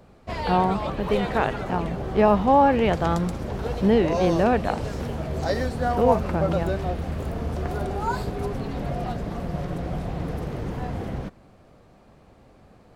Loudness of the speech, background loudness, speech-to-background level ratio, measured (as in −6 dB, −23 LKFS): −23.0 LKFS, −29.0 LKFS, 6.0 dB